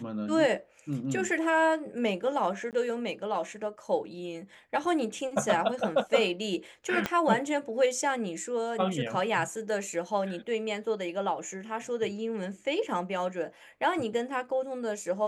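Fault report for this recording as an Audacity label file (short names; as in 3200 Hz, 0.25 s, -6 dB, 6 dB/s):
2.710000	2.730000	gap 18 ms
7.060000	7.060000	pop -13 dBFS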